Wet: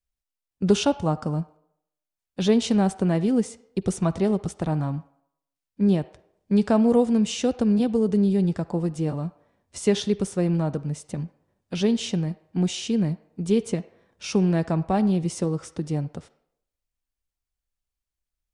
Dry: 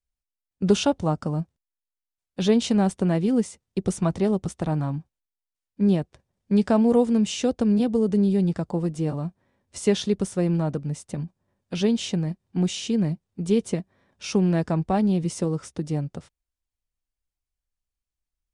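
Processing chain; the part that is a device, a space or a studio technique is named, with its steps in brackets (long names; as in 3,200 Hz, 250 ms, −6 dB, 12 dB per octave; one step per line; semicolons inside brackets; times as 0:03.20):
filtered reverb send (on a send: high-pass filter 520 Hz 12 dB per octave + low-pass filter 4,500 Hz 12 dB per octave + convolution reverb RT60 0.75 s, pre-delay 43 ms, DRR 15.5 dB)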